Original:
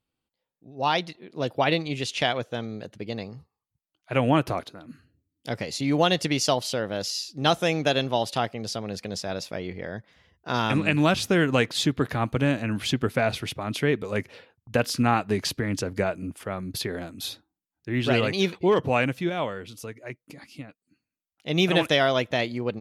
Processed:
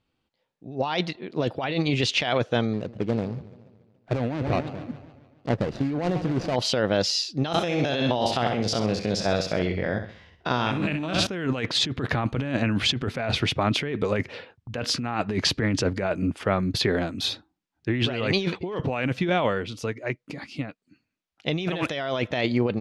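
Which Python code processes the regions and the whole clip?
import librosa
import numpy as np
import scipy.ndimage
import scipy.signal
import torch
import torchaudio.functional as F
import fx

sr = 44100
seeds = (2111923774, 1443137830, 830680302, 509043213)

y = fx.chain(x, sr, fx.median_filter(points=41),
    fx.echo_warbled(ms=143, feedback_pct=55, rate_hz=2.8, cents=168, wet_db=-17.5), at=(2.73, 6.56))
y = fx.chain(y, sr, fx.spec_steps(hold_ms=50),
    fx.high_shelf(hz=9900.0, db=7.0),
    fx.room_flutter(wall_m=11.1, rt60_s=0.45), at=(7.48, 11.27))
y = scipy.signal.sosfilt(scipy.signal.butter(2, 4900.0, 'lowpass', fs=sr, output='sos'), y)
y = fx.over_compress(y, sr, threshold_db=-29.0, ratio=-1.0)
y = F.gain(torch.from_numpy(y), 4.5).numpy()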